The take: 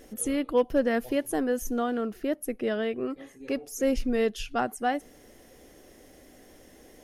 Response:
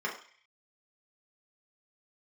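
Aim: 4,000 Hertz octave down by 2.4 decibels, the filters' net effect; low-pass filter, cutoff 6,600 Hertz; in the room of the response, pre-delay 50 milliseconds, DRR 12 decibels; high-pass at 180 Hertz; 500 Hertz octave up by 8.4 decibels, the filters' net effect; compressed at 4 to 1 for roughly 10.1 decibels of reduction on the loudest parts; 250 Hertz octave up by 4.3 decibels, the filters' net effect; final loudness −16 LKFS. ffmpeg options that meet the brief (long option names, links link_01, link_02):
-filter_complex "[0:a]highpass=180,lowpass=6600,equalizer=frequency=250:width_type=o:gain=3.5,equalizer=frequency=500:width_type=o:gain=8.5,equalizer=frequency=4000:width_type=o:gain=-3.5,acompressor=threshold=-23dB:ratio=4,asplit=2[link_01][link_02];[1:a]atrim=start_sample=2205,adelay=50[link_03];[link_02][link_03]afir=irnorm=-1:irlink=0,volume=-19dB[link_04];[link_01][link_04]amix=inputs=2:normalize=0,volume=12dB"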